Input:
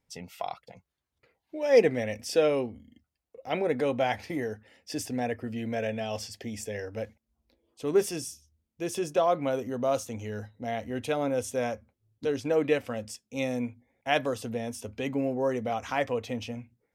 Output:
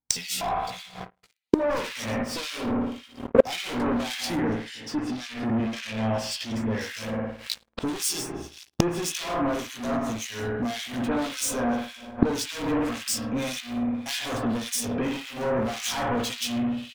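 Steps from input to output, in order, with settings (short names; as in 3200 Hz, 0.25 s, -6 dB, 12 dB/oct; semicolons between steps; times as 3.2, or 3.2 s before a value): one diode to ground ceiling -24.5 dBFS; graphic EQ 125/250/500/1000/2000/4000/8000 Hz -4/+3/-10/+3/-4/+8/+8 dB; compressor 12:1, threshold -34 dBFS, peak gain reduction 13 dB; doubler 17 ms -4 dB; spring tank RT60 1.2 s, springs 54 ms, chirp 70 ms, DRR 0.5 dB; sample leveller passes 5; expander -31 dBFS; 4.49–6.8 high shelf 10000 Hz -> 6200 Hz -12 dB; flipped gate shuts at -27 dBFS, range -29 dB; harmonic tremolo 1.8 Hz, depth 100%, crossover 1900 Hz; maximiser +30.5 dB; gain -1 dB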